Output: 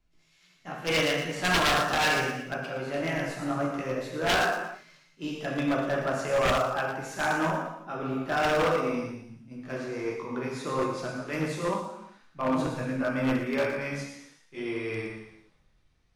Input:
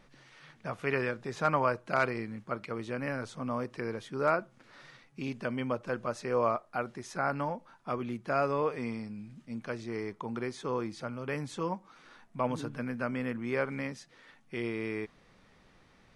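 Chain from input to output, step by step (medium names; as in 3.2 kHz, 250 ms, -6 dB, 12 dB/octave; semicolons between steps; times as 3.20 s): pitch bend over the whole clip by +3 st ending unshifted; gated-style reverb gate 460 ms falling, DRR -3 dB; wavefolder -22.5 dBFS; on a send: feedback echo behind a high-pass 117 ms, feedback 47%, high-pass 5.3 kHz, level -4.5 dB; on the sum: three bands expanded up and down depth 70%; trim +2.5 dB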